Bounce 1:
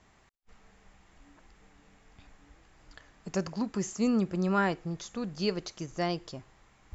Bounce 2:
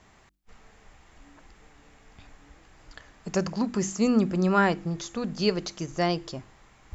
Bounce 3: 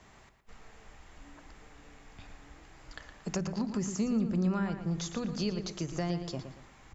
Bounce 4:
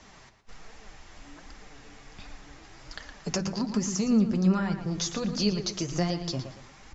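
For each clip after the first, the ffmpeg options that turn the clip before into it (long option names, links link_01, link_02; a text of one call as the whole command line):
ffmpeg -i in.wav -af "bandreject=frequency=48.42:width_type=h:width=4,bandreject=frequency=96.84:width_type=h:width=4,bandreject=frequency=145.26:width_type=h:width=4,bandreject=frequency=193.68:width_type=h:width=4,bandreject=frequency=242.1:width_type=h:width=4,bandreject=frequency=290.52:width_type=h:width=4,bandreject=frequency=338.94:width_type=h:width=4,volume=5.5dB" out.wav
ffmpeg -i in.wav -filter_complex "[0:a]acrossover=split=170[link_01][link_02];[link_02]acompressor=threshold=-33dB:ratio=16[link_03];[link_01][link_03]amix=inputs=2:normalize=0,asplit=2[link_04][link_05];[link_05]adelay=115,lowpass=frequency=4600:poles=1,volume=-8.5dB,asplit=2[link_06][link_07];[link_07]adelay=115,lowpass=frequency=4600:poles=1,volume=0.37,asplit=2[link_08][link_09];[link_09]adelay=115,lowpass=frequency=4600:poles=1,volume=0.37,asplit=2[link_10][link_11];[link_11]adelay=115,lowpass=frequency=4600:poles=1,volume=0.37[link_12];[link_04][link_06][link_08][link_10][link_12]amix=inputs=5:normalize=0" out.wav
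ffmpeg -i in.wav -af "lowpass=frequency=5700:width_type=q:width=2.2,flanger=delay=3.2:depth=7:regen=37:speed=1.3:shape=triangular,volume=8dB" out.wav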